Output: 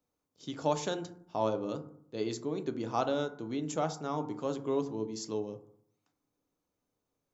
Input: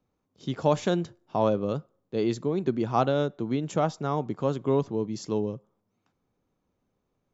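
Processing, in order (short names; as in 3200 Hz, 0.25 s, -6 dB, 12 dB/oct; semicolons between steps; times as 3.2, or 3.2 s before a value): tone controls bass -6 dB, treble +9 dB; reverb RT60 0.65 s, pre-delay 3 ms, DRR 7.5 dB; gain -7 dB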